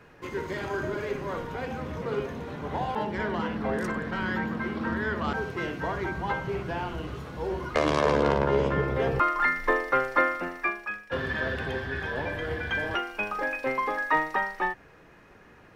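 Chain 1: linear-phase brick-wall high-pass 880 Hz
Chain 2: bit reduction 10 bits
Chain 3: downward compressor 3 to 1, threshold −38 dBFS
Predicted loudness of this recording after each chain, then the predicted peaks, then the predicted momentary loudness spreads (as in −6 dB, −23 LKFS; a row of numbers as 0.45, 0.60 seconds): −31.5, −29.0, −38.5 LKFS; −11.5, −9.0, −21.0 dBFS; 15, 10, 4 LU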